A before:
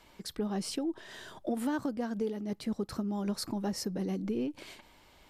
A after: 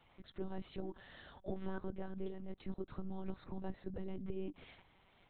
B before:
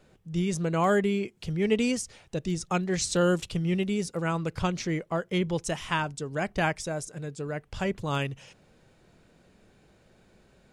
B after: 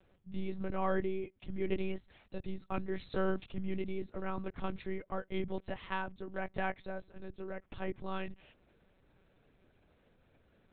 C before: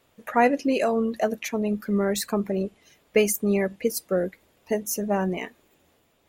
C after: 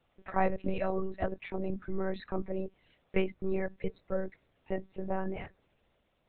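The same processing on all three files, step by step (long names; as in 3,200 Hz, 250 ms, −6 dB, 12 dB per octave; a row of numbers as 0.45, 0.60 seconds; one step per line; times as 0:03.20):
dynamic equaliser 3,000 Hz, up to −6 dB, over −51 dBFS, Q 2.4
one-pitch LPC vocoder at 8 kHz 190 Hz
level −8 dB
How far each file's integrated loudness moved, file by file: −11.0, −10.5, −10.5 LU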